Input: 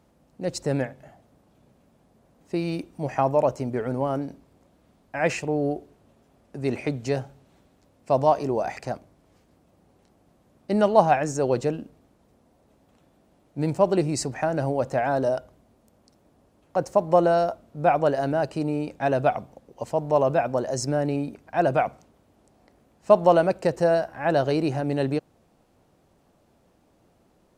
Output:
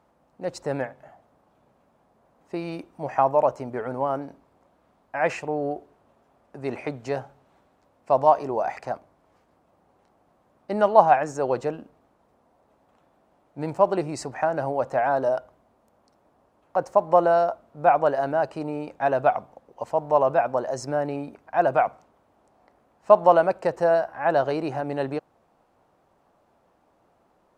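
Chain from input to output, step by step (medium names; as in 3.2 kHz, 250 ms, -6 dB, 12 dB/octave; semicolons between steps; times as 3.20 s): peaking EQ 1 kHz +13 dB 2.3 oct; trim -8.5 dB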